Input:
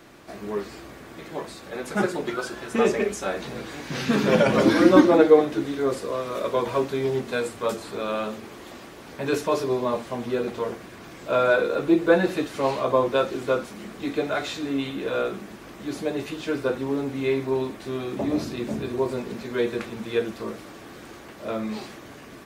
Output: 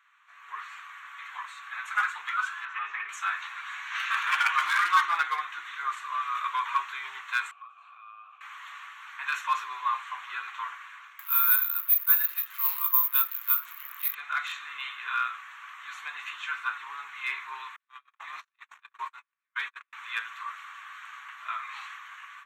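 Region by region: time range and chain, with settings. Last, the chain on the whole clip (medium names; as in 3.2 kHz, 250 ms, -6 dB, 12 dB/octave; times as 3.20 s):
2.65–3.09 s: distance through air 200 m + compression 8:1, threshold -23 dBFS + doubling 21 ms -14 dB
7.51–8.41 s: vowel filter a + compression 10:1, threshold -43 dBFS
11.19–14.15 s: careless resampling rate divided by 3×, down none, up zero stuff + upward compressor, threshold -19 dBFS
17.76–19.93 s: gate -27 dBFS, range -48 dB + peaking EQ 290 Hz -4 dB 0.42 oct
whole clip: local Wiener filter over 9 samples; elliptic high-pass 1.1 kHz, stop band 50 dB; level rider gain up to 14 dB; trim -7 dB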